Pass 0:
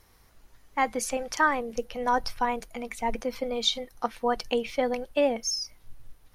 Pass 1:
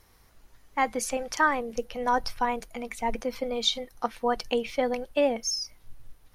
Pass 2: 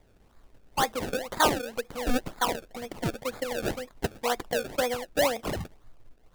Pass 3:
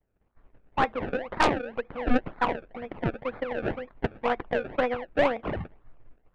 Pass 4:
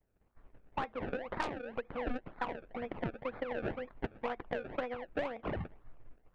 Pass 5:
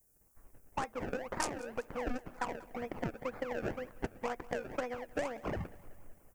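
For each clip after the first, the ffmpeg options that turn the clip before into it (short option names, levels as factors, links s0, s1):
-af anull
-filter_complex "[0:a]acrossover=split=320|490|2000[s0][s1][s2][s3];[s0]acompressor=threshold=0.00562:ratio=6[s4];[s3]asoftclip=type=tanh:threshold=0.0631[s5];[s4][s1][s2][s5]amix=inputs=4:normalize=0,acrusher=samples=30:mix=1:aa=0.000001:lfo=1:lforange=30:lforate=2"
-af "lowpass=f=2500:w=0.5412,lowpass=f=2500:w=1.3066,agate=range=0.0224:threshold=0.00355:ratio=3:detection=peak,aeval=exprs='0.316*(cos(1*acos(clip(val(0)/0.316,-1,1)))-cos(1*PI/2))+0.126*(cos(4*acos(clip(val(0)/0.316,-1,1)))-cos(4*PI/2))+0.0708*(cos(5*acos(clip(val(0)/0.316,-1,1)))-cos(5*PI/2))+0.0398*(cos(6*acos(clip(val(0)/0.316,-1,1)))-cos(6*PI/2))+0.0398*(cos(7*acos(clip(val(0)/0.316,-1,1)))-cos(7*PI/2))':c=same,volume=0.841"
-af "acompressor=threshold=0.0251:ratio=6,volume=0.841"
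-af "aexciter=amount=14.4:drive=2.9:freq=5500,aecho=1:1:188|376|564|752|940:0.0944|0.0566|0.034|0.0204|0.0122"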